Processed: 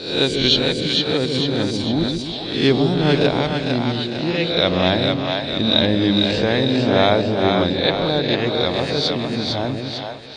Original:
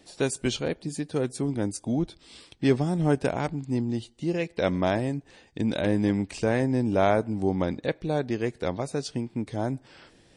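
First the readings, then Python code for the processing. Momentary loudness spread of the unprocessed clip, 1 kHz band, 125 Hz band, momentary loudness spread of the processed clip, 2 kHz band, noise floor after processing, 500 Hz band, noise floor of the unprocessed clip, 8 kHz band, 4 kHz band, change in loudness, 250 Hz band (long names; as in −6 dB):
7 LU, +8.0 dB, +6.5 dB, 6 LU, +11.0 dB, −28 dBFS, +8.0 dB, −58 dBFS, can't be measured, +22.0 dB, +9.0 dB, +7.0 dB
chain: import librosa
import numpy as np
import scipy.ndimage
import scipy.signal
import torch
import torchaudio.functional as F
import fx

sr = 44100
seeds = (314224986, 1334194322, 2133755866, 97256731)

y = fx.spec_swells(x, sr, rise_s=0.66)
y = fx.lowpass_res(y, sr, hz=3900.0, q=7.6)
y = fx.echo_split(y, sr, split_hz=520.0, low_ms=141, high_ms=452, feedback_pct=52, wet_db=-3.5)
y = y * librosa.db_to_amplitude(4.0)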